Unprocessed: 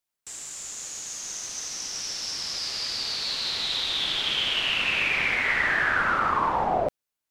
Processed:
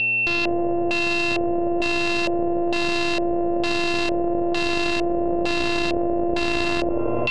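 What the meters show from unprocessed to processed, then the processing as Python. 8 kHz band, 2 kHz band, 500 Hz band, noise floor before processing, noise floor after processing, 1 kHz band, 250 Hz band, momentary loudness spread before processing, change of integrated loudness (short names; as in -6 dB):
-8.0 dB, +1.5 dB, +13.0 dB, under -85 dBFS, -22 dBFS, +1.0 dB, +20.5 dB, 11 LU, +3.0 dB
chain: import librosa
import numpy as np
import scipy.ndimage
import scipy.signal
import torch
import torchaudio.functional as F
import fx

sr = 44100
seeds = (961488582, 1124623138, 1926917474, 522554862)

p1 = np.r_[np.sort(x[:len(x) // 128 * 128].reshape(-1, 128), axis=1).ravel(), x[len(x) // 128 * 128:]]
p2 = p1 + fx.echo_thinned(p1, sr, ms=88, feedback_pct=75, hz=580.0, wet_db=-4, dry=0)
p3 = np.maximum(p2, 0.0)
p4 = fx.dmg_buzz(p3, sr, base_hz=120.0, harmonics=7, level_db=-58.0, tilt_db=-4, odd_only=False)
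p5 = fx.sample_hold(p4, sr, seeds[0], rate_hz=3300.0, jitter_pct=20)
p6 = p4 + (p5 * librosa.db_to_amplitude(-11.5))
p7 = fx.rider(p6, sr, range_db=3, speed_s=0.5)
p8 = p7 + 10.0 ** (-36.0 / 20.0) * np.sin(2.0 * np.pi * 2700.0 * np.arange(len(p7)) / sr)
p9 = fx.filter_lfo_lowpass(p8, sr, shape='square', hz=1.1, low_hz=560.0, high_hz=4200.0, q=3.8)
y = fx.env_flatten(p9, sr, amount_pct=100)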